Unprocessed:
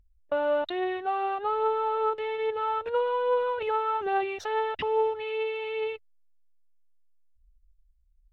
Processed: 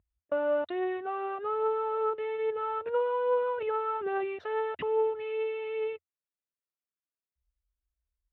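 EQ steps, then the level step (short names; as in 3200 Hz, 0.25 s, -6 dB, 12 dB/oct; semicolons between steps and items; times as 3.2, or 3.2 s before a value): HPF 120 Hz 12 dB/oct; air absorption 480 m; notch 820 Hz, Q 5.3; 0.0 dB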